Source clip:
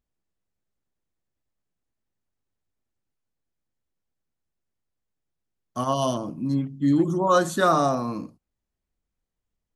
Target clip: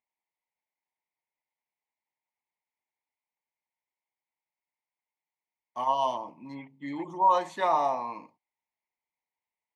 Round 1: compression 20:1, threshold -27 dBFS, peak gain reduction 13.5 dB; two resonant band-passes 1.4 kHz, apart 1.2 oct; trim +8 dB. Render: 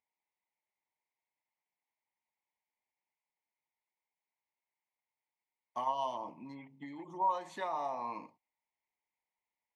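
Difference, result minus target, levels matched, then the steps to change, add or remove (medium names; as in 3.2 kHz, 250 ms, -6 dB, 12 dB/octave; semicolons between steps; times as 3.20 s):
compression: peak gain reduction +13.5 dB
remove: compression 20:1, threshold -27 dBFS, peak gain reduction 13.5 dB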